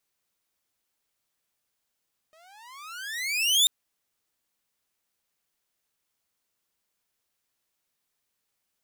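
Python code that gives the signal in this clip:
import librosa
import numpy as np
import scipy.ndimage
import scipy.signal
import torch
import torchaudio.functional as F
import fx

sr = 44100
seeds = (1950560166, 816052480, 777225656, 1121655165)

y = fx.riser_tone(sr, length_s=1.34, level_db=-13, wave='saw', hz=617.0, rise_st=31.0, swell_db=39.5)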